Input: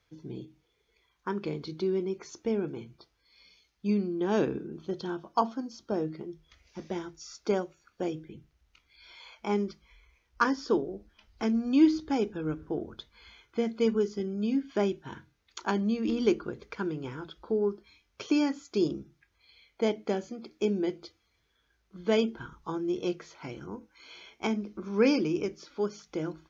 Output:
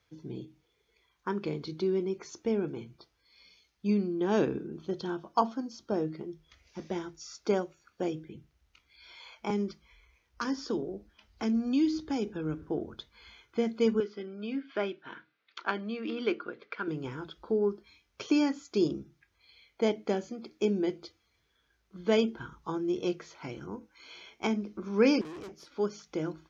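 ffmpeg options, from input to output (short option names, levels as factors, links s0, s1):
-filter_complex "[0:a]asettb=1/sr,asplit=3[s0][s1][s2];[s0]atrim=end=9.504[s3];[s1]atrim=start=9.5:end=12.62,asetpts=PTS-STARTPTS,afade=t=in:d=0.004:c=qsin,afade=t=out:st=3.116:d=0.004:c=qsin,acrossover=split=260|3000[s4][s5][s6];[s5]acompressor=threshold=0.0251:ratio=6:attack=3.2:release=140:knee=2.83:detection=peak[s7];[s4][s7][s6]amix=inputs=3:normalize=0[s8];[s2]atrim=start=12.616[s9];[s3][s8]acrossfade=d=0.004:c1=hsin:c2=qsin[s10];[s10][s9]acrossfade=d=0.004:c1=qsin:c2=hsin,asettb=1/sr,asplit=3[s11][s12][s13];[s11]atrim=end=14.004[s14];[s12]atrim=start=14:end=16.88,asetpts=PTS-STARTPTS,afade=t=in:d=0.004:c=qsin,afade=t=out:st=2.876:d=0.004:c=qsin,highpass=350,equalizer=f=390:t=q:w=4:g=-4,equalizer=f=870:t=q:w=4:g=-6,equalizer=f=1400:t=q:w=4:g=5,equalizer=f=2300:t=q:w=4:g=3,lowpass=f=4100:w=0.5412,lowpass=f=4100:w=1.3066[s15];[s13]atrim=start=16.876[s16];[s14][s15]acrossfade=d=0.004:c1=hsin:c2=qsin[s17];[s17][s16]acrossfade=d=0.004:c1=qsin:c2=hsin,asettb=1/sr,asplit=3[s18][s19][s20];[s18]atrim=end=25.214[s21];[s19]atrim=start=25.21:end=25.72,asetpts=PTS-STARTPTS,afade=t=in:d=0.004:c=qsin,afade=t=out:st=0.506:d=0.004:c=qsin,aeval=exprs='(tanh(112*val(0)+0.65)-tanh(0.65))/112':c=same[s22];[s20]atrim=start=25.716[s23];[s21][s22]acrossfade=d=0.004:c1=hsin:c2=qsin[s24];[s24][s23]acrossfade=d=0.004:c1=qsin:c2=hsin,highpass=45"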